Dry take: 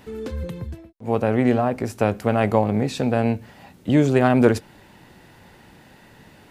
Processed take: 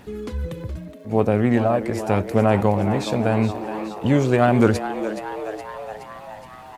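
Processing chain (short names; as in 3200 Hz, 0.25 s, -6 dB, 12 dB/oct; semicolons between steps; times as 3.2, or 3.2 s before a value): phaser 0.85 Hz, delay 1.9 ms, feedback 32%; crackle 220/s -49 dBFS; on a send: frequency-shifting echo 0.403 s, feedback 63%, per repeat +110 Hz, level -11 dB; on the sum: speed mistake 25 fps video run at 24 fps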